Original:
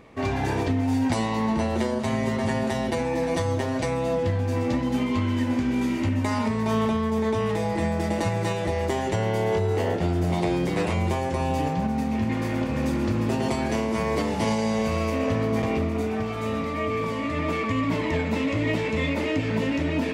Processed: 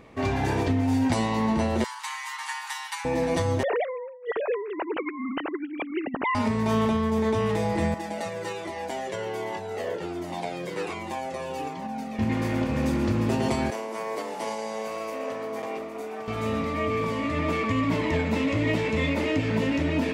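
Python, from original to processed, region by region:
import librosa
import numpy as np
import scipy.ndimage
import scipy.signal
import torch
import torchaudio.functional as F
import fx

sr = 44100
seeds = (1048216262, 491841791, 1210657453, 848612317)

y = fx.chain(x, sr, fx.steep_highpass(hz=850.0, slope=96),
    fx.high_shelf(hz=7900.0, db=7.5), at=(1.84, 3.05))
y = fx.chain(y, sr, fx.sine_speech(),
    fx.over_compress(threshold_db=-29.0, ratio=-0.5), at=(3.63, 6.35))
y = fx.chain(y, sr, fx.highpass(hz=260.0, slope=12),
    fx.comb_cascade(direction='falling', hz=1.3), at=(7.94, 12.19))
y = fx.chain(y, sr, fx.highpass(hz=550.0, slope=12),
    fx.peak_eq(hz=3200.0, db=-7.5, octaves=2.9), at=(13.7, 16.28))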